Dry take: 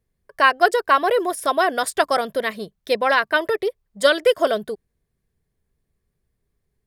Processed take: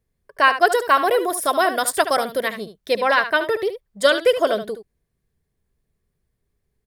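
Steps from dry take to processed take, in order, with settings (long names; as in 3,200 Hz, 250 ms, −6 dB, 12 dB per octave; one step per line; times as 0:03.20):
0:00.67–0:02.48: high-shelf EQ 10,000 Hz +11.5 dB
on a send: single-tap delay 73 ms −11 dB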